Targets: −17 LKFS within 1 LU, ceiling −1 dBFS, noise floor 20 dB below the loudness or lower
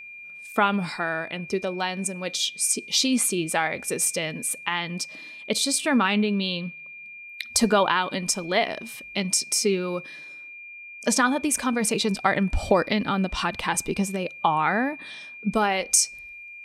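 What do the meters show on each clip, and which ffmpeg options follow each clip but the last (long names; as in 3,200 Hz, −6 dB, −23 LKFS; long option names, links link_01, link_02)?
interfering tone 2,400 Hz; level of the tone −39 dBFS; integrated loudness −24.0 LKFS; sample peak −5.0 dBFS; target loudness −17.0 LKFS
→ -af "bandreject=frequency=2400:width=30"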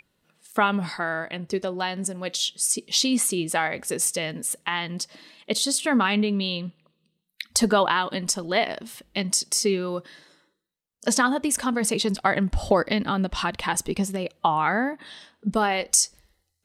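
interfering tone none found; integrated loudness −24.5 LKFS; sample peak −5.0 dBFS; target loudness −17.0 LKFS
→ -af "volume=7.5dB,alimiter=limit=-1dB:level=0:latency=1"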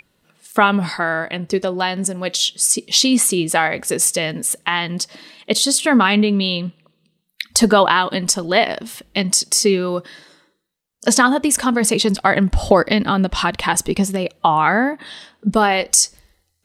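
integrated loudness −17.0 LKFS; sample peak −1.0 dBFS; background noise floor −68 dBFS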